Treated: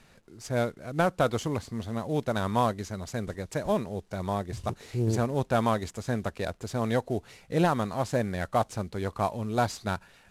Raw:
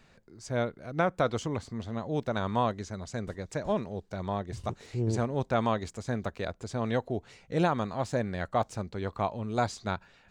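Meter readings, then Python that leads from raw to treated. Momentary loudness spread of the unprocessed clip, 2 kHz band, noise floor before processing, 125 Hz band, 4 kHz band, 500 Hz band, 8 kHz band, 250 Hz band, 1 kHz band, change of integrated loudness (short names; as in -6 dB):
9 LU, +2.0 dB, -62 dBFS, +2.5 dB, +2.5 dB, +2.0 dB, +4.0 dB, +2.5 dB, +2.0 dB, +2.5 dB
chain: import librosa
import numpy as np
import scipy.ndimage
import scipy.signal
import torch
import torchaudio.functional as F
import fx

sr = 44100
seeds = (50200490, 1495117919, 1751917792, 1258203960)

y = fx.cvsd(x, sr, bps=64000)
y = y * librosa.db_to_amplitude(2.5)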